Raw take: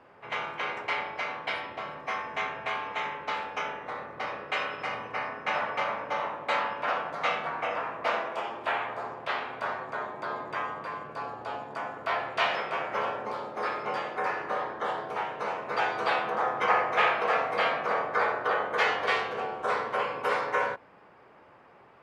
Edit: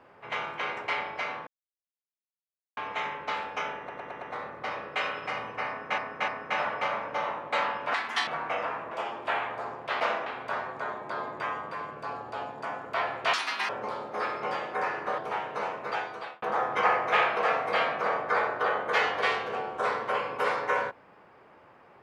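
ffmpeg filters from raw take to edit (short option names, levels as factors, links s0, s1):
-filter_complex "[0:a]asplit=18[s0][s1][s2][s3][s4][s5][s6][s7][s8][s9][s10][s11][s12][s13][s14][s15][s16][s17];[s0]atrim=end=1.47,asetpts=PTS-STARTPTS,afade=t=out:st=1.466:d=0.004:c=hsin[s18];[s1]atrim=start=1.47:end=2.77,asetpts=PTS-STARTPTS,volume=0[s19];[s2]atrim=start=2.77:end=3.892,asetpts=PTS-STARTPTS,afade=t=in:d=0.004:c=hsin[s20];[s3]atrim=start=3.778:end=3.892[s21];[s4]atrim=start=3.778:end=3.892[s22];[s5]atrim=start=3.778:end=3.892[s23];[s6]atrim=start=3.778:end=5.542[s24];[s7]atrim=start=5.238:end=5.542[s25];[s8]atrim=start=5.238:end=6.904[s26];[s9]atrim=start=6.9:end=7.4,asetpts=PTS-STARTPTS,asetrate=66150,aresample=44100[s27];[s10]atrim=start=7.396:end=8.042[s28];[s11]atrim=start=8.298:end=9.392[s29];[s12]atrim=start=8.038:end=8.302[s30];[s13]atrim=start=9.388:end=12.464[s31];[s14]atrim=start=12.46:end=13.12,asetpts=PTS-STARTPTS,asetrate=81144,aresample=44100,atrim=end_sample=15818,asetpts=PTS-STARTPTS[s32];[s15]atrim=start=13.116:end=14.612[s33];[s16]atrim=start=15.028:end=16.27,asetpts=PTS-STARTPTS,afade=t=out:st=0.512:d=0.73[s34];[s17]atrim=start=16.27,asetpts=PTS-STARTPTS,afade=t=in:d=0.004:c=hsin[s35];[s18][s19][s20]concat=n=3:v=0:a=1[s36];[s36][s21]acrossfade=d=0.004:c1=hsin:c2=hsin[s37];[s37][s22]acrossfade=d=0.004:c1=hsin:c2=hsin[s38];[s38][s23]acrossfade=d=0.004:c1=hsin:c2=hsin[s39];[s39][s24]acrossfade=d=0.004:c1=hsin:c2=hsin[s40];[s40][s25]acrossfade=d=0.004:c1=hsin:c2=hsin[s41];[s41][s26]acrossfade=d=0.004:c1=hsin:c2=hsin[s42];[s42][s27]acrossfade=d=0.004:c1=hsin:c2=hsin[s43];[s43][s28]acrossfade=d=0.004:c1=hsin:c2=hsin[s44];[s44][s29]acrossfade=d=0.004:c1=hsin:c2=hsin[s45];[s45][s30]acrossfade=d=0.004:c1=hsin:c2=hsin[s46];[s46][s31]acrossfade=d=0.004:c1=hsin:c2=hsin[s47];[s47][s32]acrossfade=d=0.004:c1=hsin:c2=hsin[s48];[s48][s33]acrossfade=d=0.004:c1=hsin:c2=hsin[s49];[s34][s35]concat=n=2:v=0:a=1[s50];[s49][s50]acrossfade=d=0.004:c1=hsin:c2=hsin"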